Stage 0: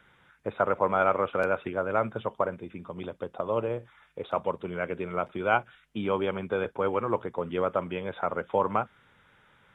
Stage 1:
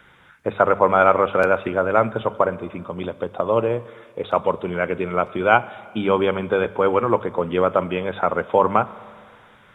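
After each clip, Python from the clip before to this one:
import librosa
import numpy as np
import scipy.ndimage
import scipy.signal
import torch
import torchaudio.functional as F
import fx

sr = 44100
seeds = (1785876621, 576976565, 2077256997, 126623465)

y = fx.hum_notches(x, sr, base_hz=50, count=4)
y = fx.rev_schroeder(y, sr, rt60_s=2.1, comb_ms=29, drr_db=18.5)
y = y * librosa.db_to_amplitude(9.0)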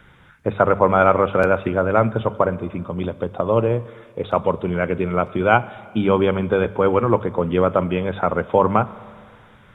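y = fx.low_shelf(x, sr, hz=220.0, db=11.5)
y = y * librosa.db_to_amplitude(-1.0)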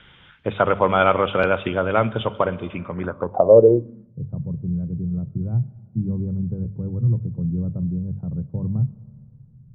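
y = fx.filter_sweep_lowpass(x, sr, from_hz=3200.0, to_hz=140.0, start_s=2.7, end_s=4.2, q=5.3)
y = y * librosa.db_to_amplitude(-3.0)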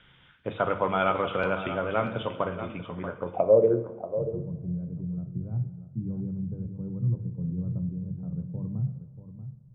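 y = x + 10.0 ** (-11.5 / 20.0) * np.pad(x, (int(636 * sr / 1000.0), 0))[:len(x)]
y = fx.rev_double_slope(y, sr, seeds[0], early_s=0.61, late_s=2.5, knee_db=-17, drr_db=7.5)
y = y * librosa.db_to_amplitude(-8.5)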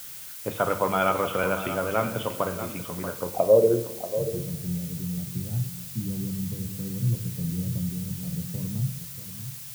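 y = fx.dmg_noise_colour(x, sr, seeds[1], colour='blue', level_db=-42.0)
y = y * librosa.db_to_amplitude(1.5)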